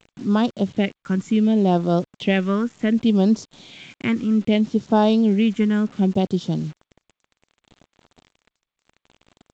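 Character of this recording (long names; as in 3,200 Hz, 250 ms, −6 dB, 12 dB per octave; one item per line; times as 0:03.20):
phaser sweep stages 4, 0.66 Hz, lowest notch 690–2,200 Hz
a quantiser's noise floor 8 bits, dither none
G.722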